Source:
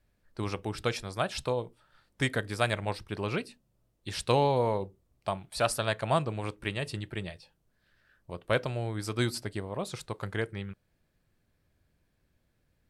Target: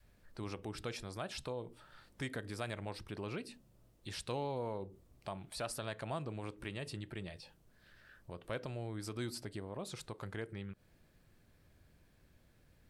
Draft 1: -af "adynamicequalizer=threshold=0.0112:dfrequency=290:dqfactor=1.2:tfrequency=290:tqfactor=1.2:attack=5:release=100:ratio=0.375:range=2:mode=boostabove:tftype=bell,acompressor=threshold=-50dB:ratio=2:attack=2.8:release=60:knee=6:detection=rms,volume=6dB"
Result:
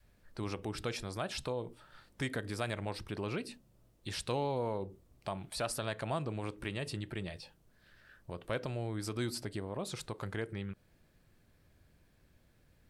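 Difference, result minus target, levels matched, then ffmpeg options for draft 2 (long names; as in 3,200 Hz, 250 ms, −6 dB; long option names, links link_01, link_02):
downward compressor: peak gain reduction −4.5 dB
-af "adynamicequalizer=threshold=0.0112:dfrequency=290:dqfactor=1.2:tfrequency=290:tqfactor=1.2:attack=5:release=100:ratio=0.375:range=2:mode=boostabove:tftype=bell,acompressor=threshold=-59dB:ratio=2:attack=2.8:release=60:knee=6:detection=rms,volume=6dB"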